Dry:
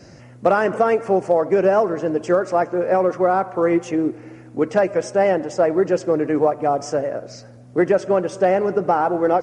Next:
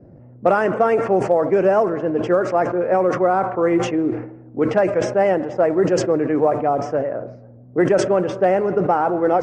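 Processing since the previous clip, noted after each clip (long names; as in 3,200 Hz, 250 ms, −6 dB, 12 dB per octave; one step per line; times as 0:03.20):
low-pass that shuts in the quiet parts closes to 510 Hz, open at −12 dBFS
dynamic equaliser 4,900 Hz, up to −5 dB, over −43 dBFS, Q 1.1
level that may fall only so fast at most 82 dB per second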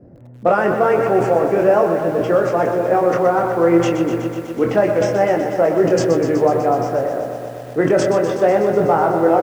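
double-tracking delay 24 ms −5 dB
single-tap delay 267 ms −21.5 dB
feedback echo at a low word length 124 ms, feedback 80%, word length 7 bits, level −9 dB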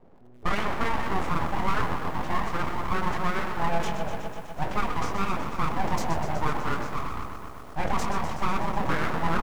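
full-wave rectification
level −8.5 dB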